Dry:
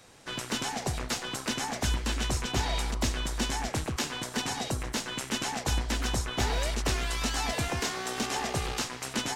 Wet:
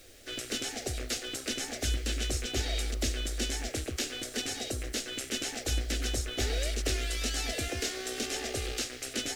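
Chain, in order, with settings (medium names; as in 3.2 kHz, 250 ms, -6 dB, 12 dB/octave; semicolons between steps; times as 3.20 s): added noise pink -55 dBFS; static phaser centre 400 Hz, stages 4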